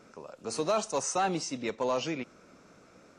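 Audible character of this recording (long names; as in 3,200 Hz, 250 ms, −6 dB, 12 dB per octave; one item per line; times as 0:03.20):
background noise floor −58 dBFS
spectral slope −3.5 dB per octave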